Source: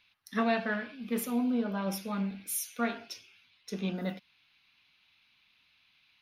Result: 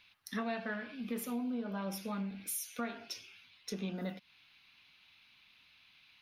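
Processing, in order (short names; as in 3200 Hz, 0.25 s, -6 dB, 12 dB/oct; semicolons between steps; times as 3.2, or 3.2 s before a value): compressor 3:1, threshold -42 dBFS, peak gain reduction 13.5 dB; gain +3.5 dB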